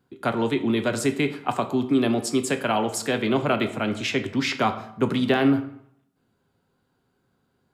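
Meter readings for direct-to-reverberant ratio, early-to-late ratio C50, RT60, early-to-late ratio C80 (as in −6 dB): 7.0 dB, 12.5 dB, 0.70 s, 15.0 dB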